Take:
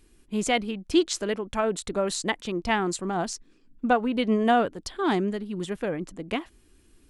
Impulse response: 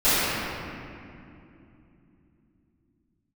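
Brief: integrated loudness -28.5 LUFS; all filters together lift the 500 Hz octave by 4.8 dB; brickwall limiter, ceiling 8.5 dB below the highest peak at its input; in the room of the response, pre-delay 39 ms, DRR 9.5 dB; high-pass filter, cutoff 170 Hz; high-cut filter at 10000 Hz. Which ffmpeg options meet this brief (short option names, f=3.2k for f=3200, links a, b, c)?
-filter_complex "[0:a]highpass=170,lowpass=10k,equalizer=f=500:t=o:g=6.5,alimiter=limit=-15dB:level=0:latency=1,asplit=2[a][b];[1:a]atrim=start_sample=2205,adelay=39[c];[b][c]afir=irnorm=-1:irlink=0,volume=-30.5dB[d];[a][d]amix=inputs=2:normalize=0,volume=-2.5dB"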